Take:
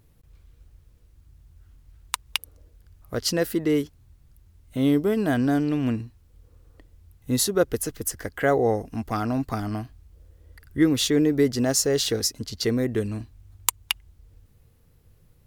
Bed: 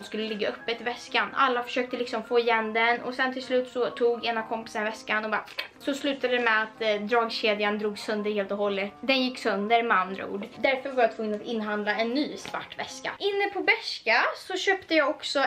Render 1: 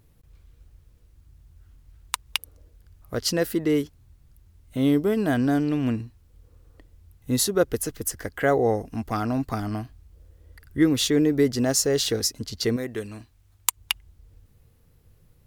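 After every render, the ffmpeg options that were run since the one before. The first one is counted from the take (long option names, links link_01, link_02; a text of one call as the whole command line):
ffmpeg -i in.wav -filter_complex "[0:a]asettb=1/sr,asplit=3[link_01][link_02][link_03];[link_01]atrim=end=12.764[link_04];[link_02]atrim=start=12.76:end=13.77,asetpts=PTS-STARTPTS,afade=type=in:duration=0.004:curve=qsin,afade=type=out:start_time=1.006:duration=0.004:curve=qsin,lowshelf=frequency=430:gain=-10.5[link_05];[link_03]atrim=start=13.766[link_06];[link_04][link_05]acrossfade=duration=0.004:curve1=hsin:curve2=qsin[link_07];[link_07][link_06]acrossfade=duration=0.004:curve1=qsin:curve2=hsin" out.wav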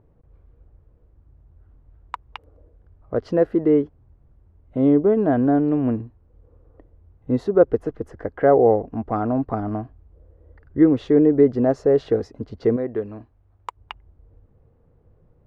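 ffmpeg -i in.wav -af "lowpass=1200,equalizer=frequency=540:width=0.65:gain=7.5" out.wav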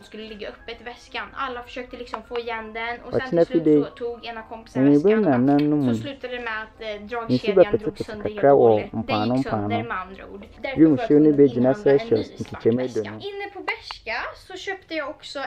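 ffmpeg -i in.wav -i bed.wav -filter_complex "[1:a]volume=-5.5dB[link_01];[0:a][link_01]amix=inputs=2:normalize=0" out.wav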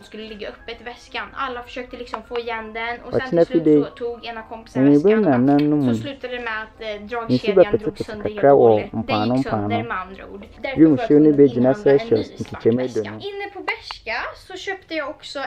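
ffmpeg -i in.wav -af "volume=2.5dB,alimiter=limit=-1dB:level=0:latency=1" out.wav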